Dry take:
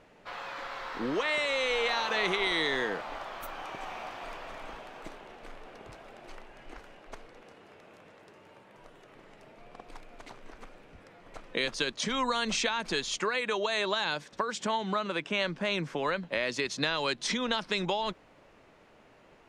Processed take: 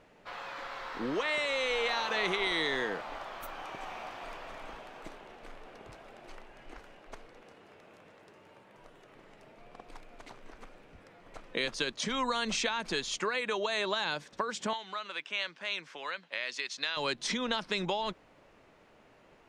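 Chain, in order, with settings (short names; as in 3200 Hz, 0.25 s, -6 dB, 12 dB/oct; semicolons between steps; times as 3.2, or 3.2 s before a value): 14.73–16.97 band-pass 3400 Hz, Q 0.54; gain -2 dB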